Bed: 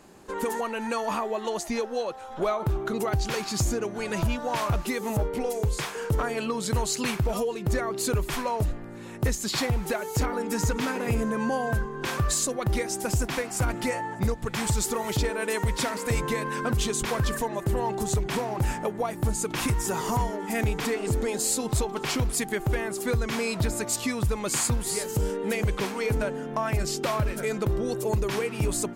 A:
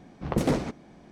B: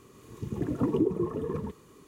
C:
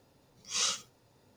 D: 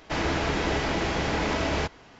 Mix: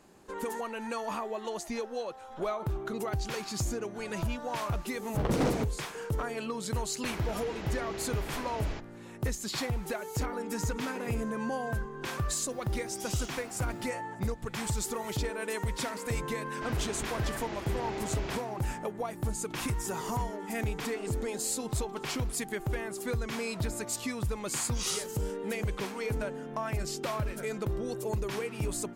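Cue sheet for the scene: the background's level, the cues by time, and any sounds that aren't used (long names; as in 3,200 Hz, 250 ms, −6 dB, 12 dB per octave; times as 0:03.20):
bed −6.5 dB
0:04.93: mix in A −9.5 dB + leveller curve on the samples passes 3
0:06.93: mix in D −15 dB
0:12.51: mix in C −14.5 dB + envelope flattener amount 70%
0:16.51: mix in D −14 dB
0:24.25: mix in C −4.5 dB
not used: B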